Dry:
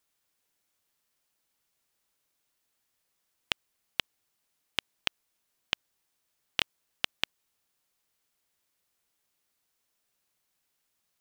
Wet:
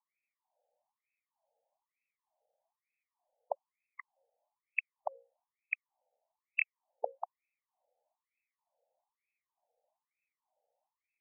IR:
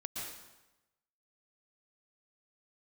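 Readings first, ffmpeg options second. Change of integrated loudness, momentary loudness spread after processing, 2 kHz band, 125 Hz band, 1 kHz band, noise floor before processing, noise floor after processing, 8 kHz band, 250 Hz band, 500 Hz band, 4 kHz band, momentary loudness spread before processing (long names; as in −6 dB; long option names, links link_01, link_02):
−4.5 dB, 19 LU, −2.0 dB, below −40 dB, +1.0 dB, −79 dBFS, below −85 dBFS, below −30 dB, below −35 dB, +6.5 dB, below −40 dB, 3 LU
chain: -af "asuperstop=centerf=1500:order=4:qfactor=0.52,bandreject=frequency=60:width_type=h:width=6,bandreject=frequency=120:width_type=h:width=6,bandreject=frequency=180:width_type=h:width=6,bandreject=frequency=240:width_type=h:width=6,bandreject=frequency=300:width_type=h:width=6,bandreject=frequency=360:width_type=h:width=6,bandreject=frequency=420:width_type=h:width=6,bandreject=frequency=480:width_type=h:width=6,bandreject=frequency=540:width_type=h:width=6,afftfilt=real='re*between(b*sr/1024,620*pow(1900/620,0.5+0.5*sin(2*PI*1.1*pts/sr))/1.41,620*pow(1900/620,0.5+0.5*sin(2*PI*1.1*pts/sr))*1.41)':imag='im*between(b*sr/1024,620*pow(1900/620,0.5+0.5*sin(2*PI*1.1*pts/sr))/1.41,620*pow(1900/620,0.5+0.5*sin(2*PI*1.1*pts/sr))*1.41)':win_size=1024:overlap=0.75,volume=17dB"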